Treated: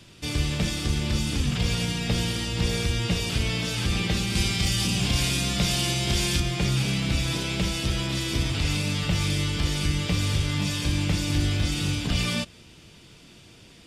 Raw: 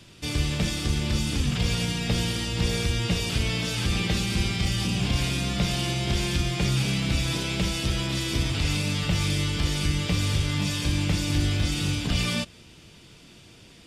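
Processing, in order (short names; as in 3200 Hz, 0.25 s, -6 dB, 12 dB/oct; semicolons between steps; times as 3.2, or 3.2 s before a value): 4.35–6.4 high shelf 3800 Hz +8 dB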